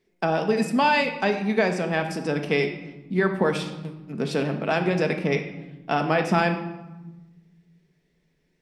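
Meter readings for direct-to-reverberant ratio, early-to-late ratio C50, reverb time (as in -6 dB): 4.5 dB, 8.5 dB, 1.1 s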